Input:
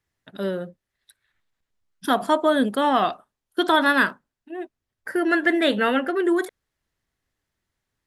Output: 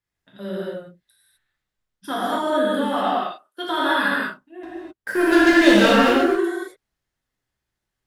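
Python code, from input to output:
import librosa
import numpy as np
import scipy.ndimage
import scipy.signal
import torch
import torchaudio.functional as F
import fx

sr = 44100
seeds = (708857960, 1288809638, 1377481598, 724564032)

y = fx.highpass(x, sr, hz=410.0, slope=12, at=(3.05, 3.65))
y = fx.leveller(y, sr, passes=3, at=(4.63, 6.17))
y = fx.rev_gated(y, sr, seeds[0], gate_ms=280, shape='flat', drr_db=-8.0)
y = y * librosa.db_to_amplitude(-10.0)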